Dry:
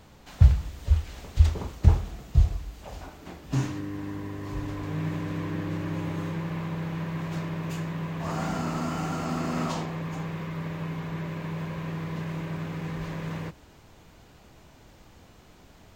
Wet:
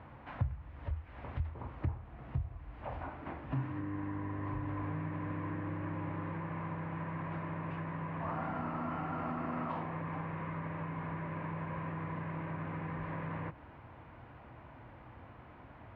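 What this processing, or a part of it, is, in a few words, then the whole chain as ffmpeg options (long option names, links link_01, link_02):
bass amplifier: -af "acompressor=threshold=-36dB:ratio=4,highpass=68,equalizer=frequency=120:width_type=q:width=4:gain=4,equalizer=frequency=180:width_type=q:width=4:gain=-9,equalizer=frequency=410:width_type=q:width=4:gain=-7,equalizer=frequency=1000:width_type=q:width=4:gain=4,lowpass=frequency=2200:width=0.5412,lowpass=frequency=2200:width=1.3066,volume=2dB"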